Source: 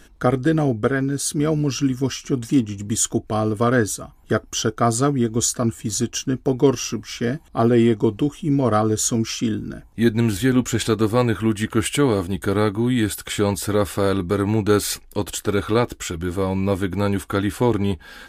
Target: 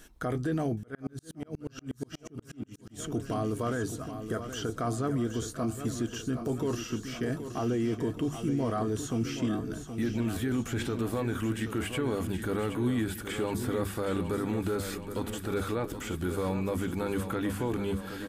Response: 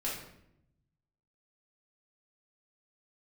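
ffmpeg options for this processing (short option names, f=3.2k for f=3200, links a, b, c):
-filter_complex "[0:a]acrossover=split=2600[a][b];[b]acompressor=threshold=-41dB:ratio=4:attack=1:release=60[c];[a][c]amix=inputs=2:normalize=0,highshelf=f=8.7k:g=9.5,bandreject=f=50:t=h:w=6,bandreject=f=100:t=h:w=6,bandreject=f=150:t=h:w=6,bandreject=f=200:t=h:w=6,alimiter=limit=-17dB:level=0:latency=1:release=13,aecho=1:1:773|1546|2319|3092|3865|4638|5411:0.335|0.201|0.121|0.0724|0.0434|0.026|0.0156,asettb=1/sr,asplit=3[d][e][f];[d]atrim=end=0.834[g];[e]atrim=start=0.83:end=3,asetpts=PTS-STARTPTS,afade=t=in:d=0.004:c=qsin,afade=t=out:st=2.166:d=0.004:c=qsin,aeval=exprs='val(0)*pow(10,-38*if(lt(mod(-8.3*n/s,1),2*abs(-8.3)/1000),1-mod(-8.3*n/s,1)/(2*abs(-8.3)/1000),(mod(-8.3*n/s,1)-2*abs(-8.3)/1000)/(1-2*abs(-8.3)/1000))/20)':c=same[h];[f]atrim=start=2.996[i];[g][h]acrossfade=d=0.004:c1=hsin:c2=qsin[j];[j][i]acrossfade=d=0.004:c1=qsin:c2=hsin,volume=-6dB"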